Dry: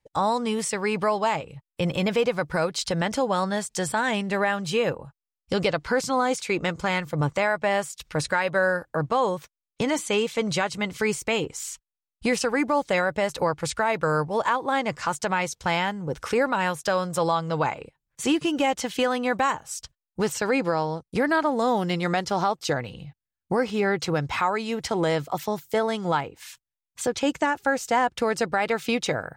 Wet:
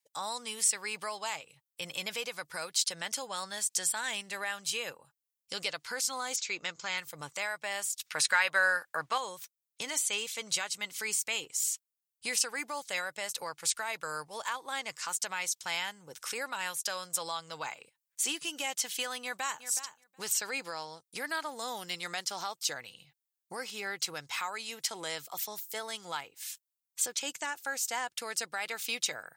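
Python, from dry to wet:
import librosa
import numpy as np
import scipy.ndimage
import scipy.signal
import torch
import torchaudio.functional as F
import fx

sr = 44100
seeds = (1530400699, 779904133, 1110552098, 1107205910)

y = fx.steep_lowpass(x, sr, hz=7400.0, slope=72, at=(6.36, 6.98))
y = fx.peak_eq(y, sr, hz=1600.0, db=9.5, octaves=2.9, at=(8.06, 9.18))
y = fx.echo_throw(y, sr, start_s=19.22, length_s=0.44, ms=370, feedback_pct=10, wet_db=-12.0)
y = scipy.signal.sosfilt(scipy.signal.butter(2, 100.0, 'highpass', fs=sr, output='sos'), y)
y = F.preemphasis(torch.from_numpy(y), 0.97).numpy()
y = y * librosa.db_to_amplitude(3.5)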